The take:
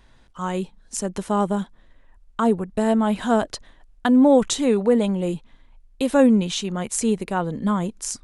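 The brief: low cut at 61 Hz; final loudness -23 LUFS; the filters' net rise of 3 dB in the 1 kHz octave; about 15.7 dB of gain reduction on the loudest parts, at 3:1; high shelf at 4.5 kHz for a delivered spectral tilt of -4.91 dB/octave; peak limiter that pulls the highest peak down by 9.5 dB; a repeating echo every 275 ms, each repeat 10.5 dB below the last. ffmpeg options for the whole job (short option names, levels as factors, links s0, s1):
-af "highpass=61,equalizer=f=1000:t=o:g=4,highshelf=f=4500:g=-3.5,acompressor=threshold=0.0224:ratio=3,alimiter=level_in=1.06:limit=0.0631:level=0:latency=1,volume=0.944,aecho=1:1:275|550|825:0.299|0.0896|0.0269,volume=3.76"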